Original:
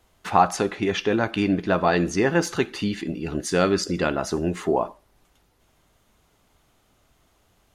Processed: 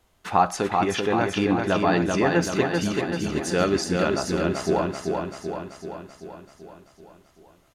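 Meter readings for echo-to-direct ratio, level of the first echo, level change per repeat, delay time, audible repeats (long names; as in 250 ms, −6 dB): −2.0 dB, −4.0 dB, −4.5 dB, 385 ms, 7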